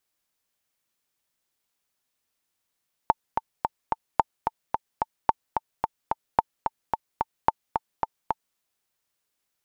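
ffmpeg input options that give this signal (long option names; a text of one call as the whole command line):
ffmpeg -f lavfi -i "aevalsrc='pow(10,(-4-6*gte(mod(t,4*60/219),60/219))/20)*sin(2*PI*892*mod(t,60/219))*exp(-6.91*mod(t,60/219)/0.03)':duration=5.47:sample_rate=44100" out.wav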